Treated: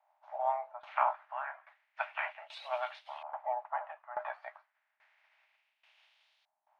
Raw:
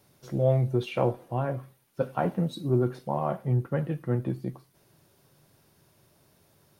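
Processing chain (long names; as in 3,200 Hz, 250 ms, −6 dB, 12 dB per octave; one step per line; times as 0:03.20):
ceiling on every frequency bin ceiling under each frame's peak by 25 dB
auto-filter low-pass saw up 0.31 Hz 760–3,800 Hz
Chebyshev high-pass with heavy ripple 600 Hz, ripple 6 dB
shaped tremolo saw down 1.2 Hz, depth 90%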